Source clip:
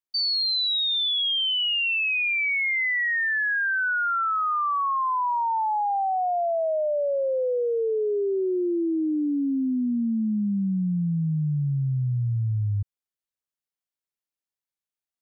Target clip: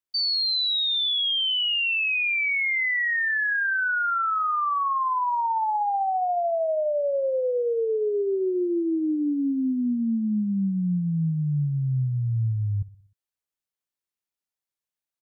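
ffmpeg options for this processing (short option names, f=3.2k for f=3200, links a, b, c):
-af "aecho=1:1:61|122|183|244|305:0.126|0.068|0.0367|0.0198|0.0107"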